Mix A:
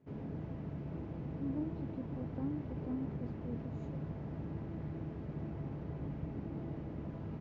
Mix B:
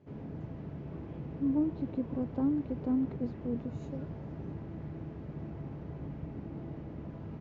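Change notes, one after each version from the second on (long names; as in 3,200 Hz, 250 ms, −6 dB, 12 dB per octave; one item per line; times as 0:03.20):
speech +10.0 dB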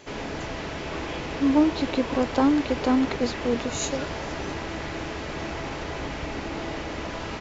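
master: remove resonant band-pass 140 Hz, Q 1.7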